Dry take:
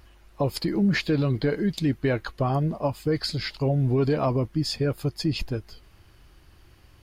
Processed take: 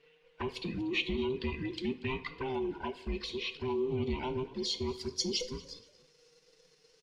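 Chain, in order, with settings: every band turned upside down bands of 500 Hz; peaking EQ 12 kHz -5.5 dB 0.22 oct; band-stop 1.3 kHz, Q 9.4; waveshaping leveller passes 1; pre-emphasis filter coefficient 0.8; touch-sensitive flanger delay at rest 7.3 ms, full sweep at -31 dBFS; low-pass sweep 2.8 kHz -> 5.7 kHz, 4.25–5.21 s; on a send: frequency-shifting echo 237 ms, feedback 33%, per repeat +47 Hz, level -21 dB; on the sum: plate-style reverb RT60 0.67 s, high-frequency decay 0.75×, DRR 10.5 dB

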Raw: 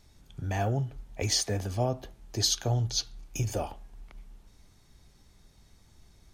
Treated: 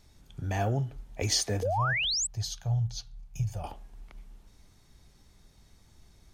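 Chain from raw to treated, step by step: 1.63–3.64 s: FFT filter 170 Hz 0 dB, 260 Hz -27 dB, 740 Hz -8 dB, 1.3 kHz -11 dB; 1.62–2.27 s: painted sound rise 440–8400 Hz -29 dBFS

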